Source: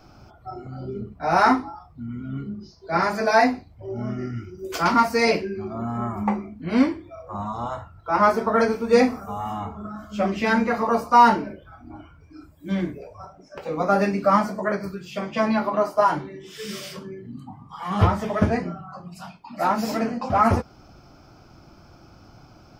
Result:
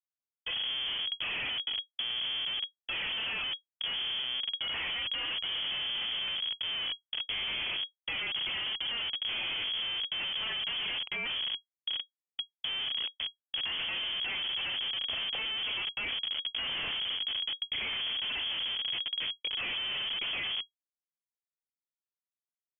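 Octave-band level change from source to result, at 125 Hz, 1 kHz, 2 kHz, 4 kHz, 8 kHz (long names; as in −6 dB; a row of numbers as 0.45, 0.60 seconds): −27.5 dB, −26.0 dB, −6.0 dB, +11.5 dB, below −35 dB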